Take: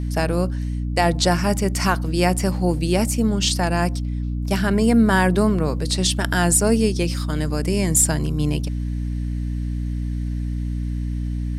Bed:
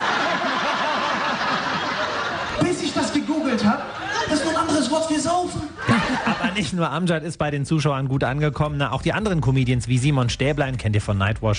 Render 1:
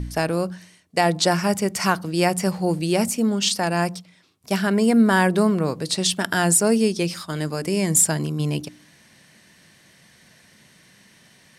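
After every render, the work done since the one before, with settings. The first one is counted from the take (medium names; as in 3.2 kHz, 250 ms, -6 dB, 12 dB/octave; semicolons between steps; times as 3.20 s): de-hum 60 Hz, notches 5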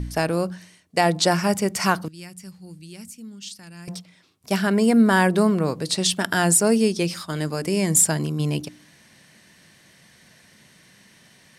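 2.08–3.88 s: amplifier tone stack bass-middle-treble 6-0-2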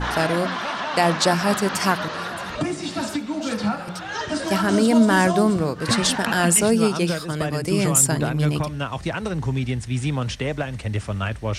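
add bed -5 dB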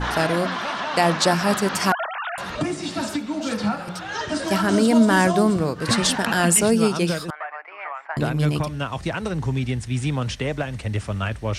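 1.92–2.38 s: formants replaced by sine waves; 7.30–8.17 s: elliptic band-pass 730–2200 Hz, stop band 70 dB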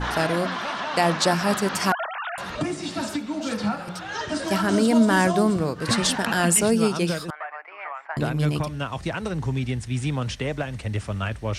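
trim -2 dB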